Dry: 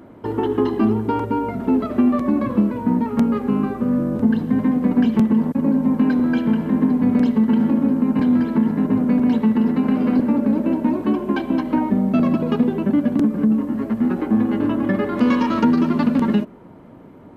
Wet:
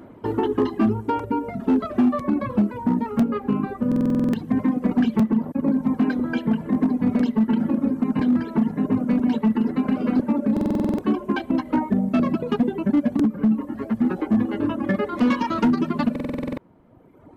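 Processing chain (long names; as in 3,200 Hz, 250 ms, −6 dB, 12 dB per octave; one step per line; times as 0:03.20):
reverb reduction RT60 1.8 s
hard clipping −13 dBFS, distortion −19 dB
buffer that repeats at 0:03.87/0:10.52/0:16.11, samples 2,048, times 9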